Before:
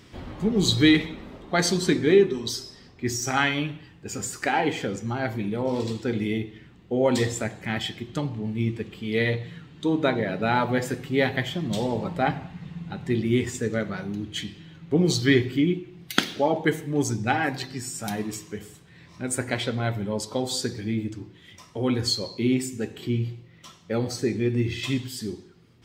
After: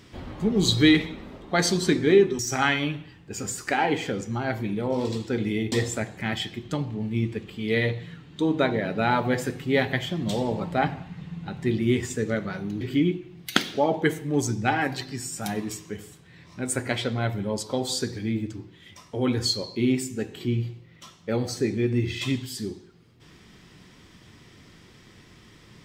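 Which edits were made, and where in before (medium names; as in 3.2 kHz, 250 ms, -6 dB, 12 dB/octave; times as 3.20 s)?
2.39–3.14 s: delete
6.47–7.16 s: delete
14.25–15.43 s: delete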